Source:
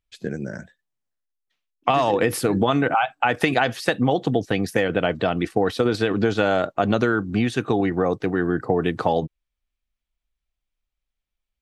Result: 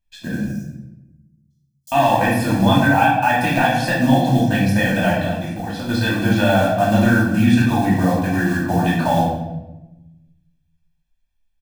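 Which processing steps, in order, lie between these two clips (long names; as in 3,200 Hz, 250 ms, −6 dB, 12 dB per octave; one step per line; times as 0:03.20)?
one scale factor per block 5 bits
0:00.45–0:01.92: inverse Chebyshev high-pass filter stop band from 2,600 Hz, stop band 40 dB
de-essing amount 55%
comb filter 1.2 ms, depth 95%
0:05.17–0:05.89: downward compressor 6 to 1, threshold −26 dBFS, peak gain reduction 11 dB
rectangular room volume 420 cubic metres, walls mixed, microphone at 2.7 metres
level −5 dB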